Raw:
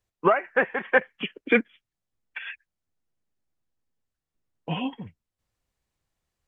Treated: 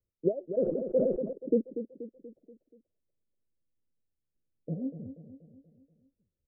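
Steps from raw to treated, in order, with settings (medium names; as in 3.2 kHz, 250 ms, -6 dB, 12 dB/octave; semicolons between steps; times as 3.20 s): steep low-pass 590 Hz 72 dB/octave; feedback delay 240 ms, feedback 50%, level -10.5 dB; 0.46–1.33 s: decay stretcher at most 36 dB/s; trim -4 dB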